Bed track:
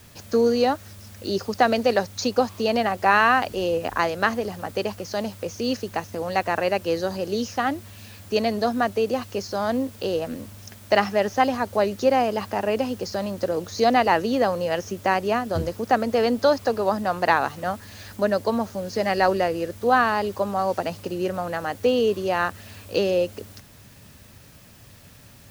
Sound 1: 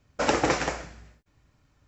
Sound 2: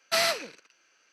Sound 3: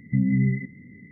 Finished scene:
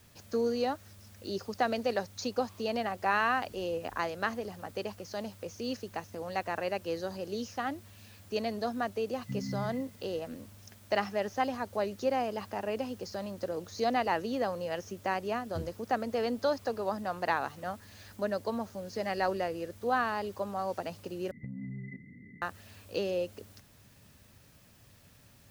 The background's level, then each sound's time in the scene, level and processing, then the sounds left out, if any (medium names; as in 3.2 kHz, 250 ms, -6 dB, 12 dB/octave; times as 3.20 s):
bed track -10.5 dB
9.16 s: add 3 -15.5 dB
21.31 s: replace with 3 -5.5 dB + compression, threshold -33 dBFS
not used: 1, 2